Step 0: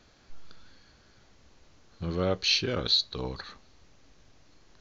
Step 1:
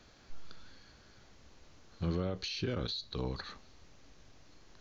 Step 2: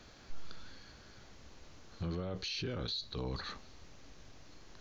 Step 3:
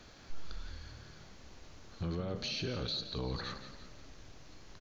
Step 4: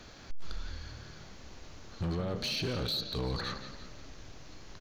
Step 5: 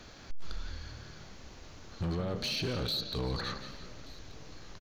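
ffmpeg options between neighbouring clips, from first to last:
ffmpeg -i in.wav -filter_complex "[0:a]alimiter=limit=-23dB:level=0:latency=1:release=34,acrossover=split=320[link_01][link_02];[link_02]acompressor=threshold=-40dB:ratio=2.5[link_03];[link_01][link_03]amix=inputs=2:normalize=0" out.wav
ffmpeg -i in.wav -af "alimiter=level_in=10dB:limit=-24dB:level=0:latency=1:release=18,volume=-10dB,volume=3.5dB" out.wav
ffmpeg -i in.wav -filter_complex "[0:a]asplit=6[link_01][link_02][link_03][link_04][link_05][link_06];[link_02]adelay=172,afreqshift=38,volume=-11dB[link_07];[link_03]adelay=344,afreqshift=76,volume=-17.6dB[link_08];[link_04]adelay=516,afreqshift=114,volume=-24.1dB[link_09];[link_05]adelay=688,afreqshift=152,volume=-30.7dB[link_10];[link_06]adelay=860,afreqshift=190,volume=-37.2dB[link_11];[link_01][link_07][link_08][link_09][link_10][link_11]amix=inputs=6:normalize=0,volume=1dB" out.wav
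ffmpeg -i in.wav -af "asoftclip=type=hard:threshold=-33dB,volume=4.5dB" out.wav
ffmpeg -i in.wav -af "aecho=1:1:1181:0.075" out.wav

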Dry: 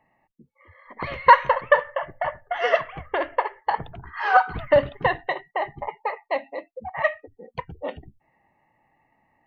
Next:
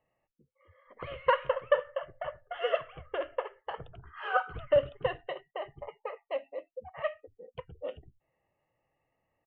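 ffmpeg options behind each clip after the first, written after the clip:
ffmpeg -i in.wav -af "firequalizer=gain_entry='entry(120,0);entry(220,-9);entry(510,5);entry(870,-11);entry(1300,2);entry(1900,-9);entry(3000,4);entry(4300,-19)':delay=0.05:min_phase=1,volume=-8.5dB" out.wav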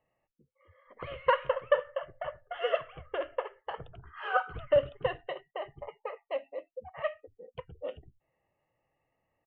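ffmpeg -i in.wav -af anull out.wav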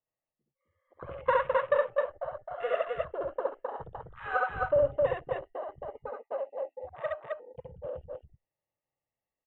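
ffmpeg -i in.wav -filter_complex "[0:a]acrossover=split=3000[link_01][link_02];[link_02]acompressor=threshold=-59dB:ratio=4:attack=1:release=60[link_03];[link_01][link_03]amix=inputs=2:normalize=0,afwtdn=0.01,aecho=1:1:67.06|262.4:0.891|0.794,volume=-2dB" out.wav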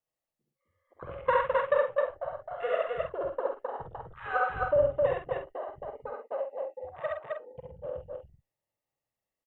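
ffmpeg -i in.wav -filter_complex "[0:a]asplit=2[link_01][link_02];[link_02]adelay=47,volume=-7dB[link_03];[link_01][link_03]amix=inputs=2:normalize=0" out.wav

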